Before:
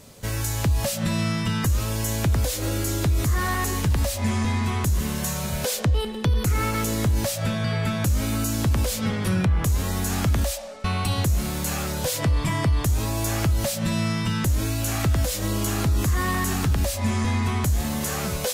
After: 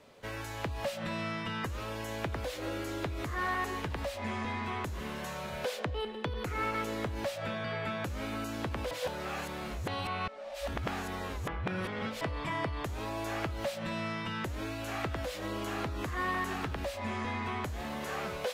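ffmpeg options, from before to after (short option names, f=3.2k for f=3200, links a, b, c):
-filter_complex "[0:a]asplit=3[a][b][c];[a]atrim=end=8.912[d];[b]atrim=start=8.908:end=12.212,asetpts=PTS-STARTPTS,areverse[e];[c]atrim=start=12.208[f];[d][e]acrossfade=d=0.004:c1=hsin:c2=hsin[g];[g][f]acrossfade=d=0.004:c1=hsin:c2=hsin,acrossover=split=300 3600:gain=0.224 1 0.126[h][i][j];[h][i][j]amix=inputs=3:normalize=0,volume=-5dB"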